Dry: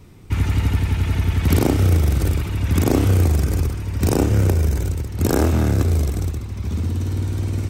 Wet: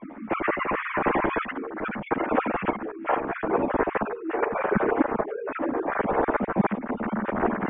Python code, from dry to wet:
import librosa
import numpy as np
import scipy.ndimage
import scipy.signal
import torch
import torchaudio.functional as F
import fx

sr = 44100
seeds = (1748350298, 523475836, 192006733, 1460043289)

y = fx.sine_speech(x, sr)
y = scipy.signal.sosfilt(scipy.signal.butter(4, 2000.0, 'lowpass', fs=sr, output='sos'), y)
y = fx.over_compress(y, sr, threshold_db=-25.0, ratio=-1.0)
y = fx.chorus_voices(y, sr, voices=6, hz=0.39, base_ms=12, depth_ms=3.5, mix_pct=60)
y = y * librosa.db_to_amplitude(1.0)